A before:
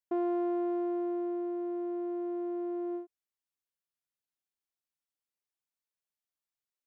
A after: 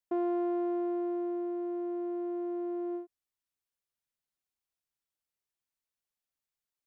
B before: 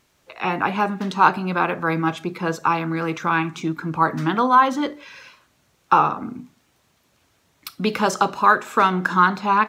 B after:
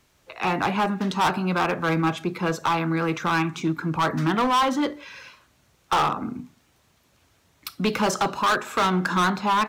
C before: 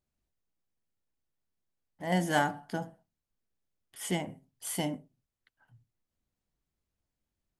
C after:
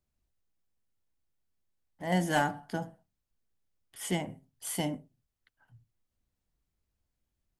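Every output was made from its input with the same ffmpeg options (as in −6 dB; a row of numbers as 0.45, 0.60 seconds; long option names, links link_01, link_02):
-filter_complex "[0:a]acrossover=split=100[link_01][link_02];[link_01]acontrast=36[link_03];[link_02]asoftclip=type=hard:threshold=-17.5dB[link_04];[link_03][link_04]amix=inputs=2:normalize=0"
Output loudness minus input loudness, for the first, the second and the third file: 0.0, −3.5, 0.0 LU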